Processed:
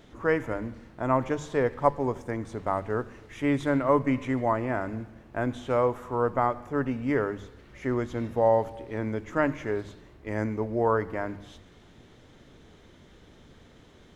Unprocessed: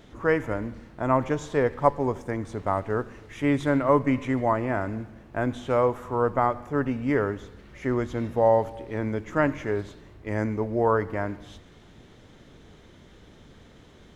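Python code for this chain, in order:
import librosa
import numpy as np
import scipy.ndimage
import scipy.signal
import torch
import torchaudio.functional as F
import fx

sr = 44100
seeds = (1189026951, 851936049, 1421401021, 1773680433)

y = fx.hum_notches(x, sr, base_hz=50, count=4)
y = y * 10.0 ** (-2.0 / 20.0)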